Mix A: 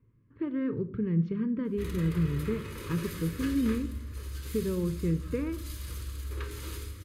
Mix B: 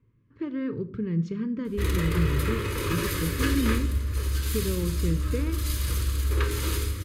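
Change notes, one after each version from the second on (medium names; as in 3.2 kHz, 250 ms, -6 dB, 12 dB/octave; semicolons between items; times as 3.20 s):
speech: remove distance through air 300 m; background +11.5 dB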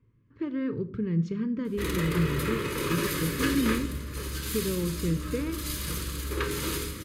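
background: add resonant low shelf 120 Hz -7 dB, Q 3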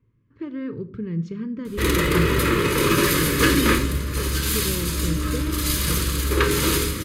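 background +10.5 dB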